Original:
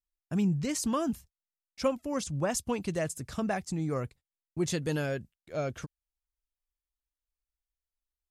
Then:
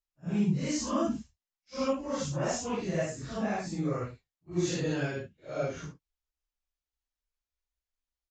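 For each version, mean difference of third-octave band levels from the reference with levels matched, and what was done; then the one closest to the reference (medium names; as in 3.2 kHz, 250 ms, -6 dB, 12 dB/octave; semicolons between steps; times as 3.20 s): 7.5 dB: phase randomisation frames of 200 ms; resampled via 16 kHz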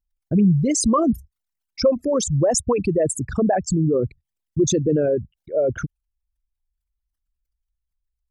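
10.5 dB: resonances exaggerated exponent 3; in parallel at -1.5 dB: peak limiter -27 dBFS, peak gain reduction 8.5 dB; on the sum: trim +8 dB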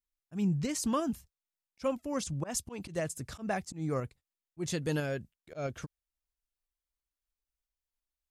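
2.5 dB: slow attack 124 ms; tremolo saw up 3 Hz, depth 30%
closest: third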